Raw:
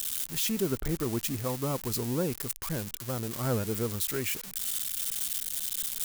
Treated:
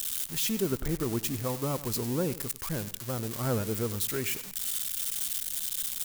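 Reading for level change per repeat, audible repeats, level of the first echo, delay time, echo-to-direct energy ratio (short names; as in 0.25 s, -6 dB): -10.5 dB, 2, -16.0 dB, 97 ms, -15.5 dB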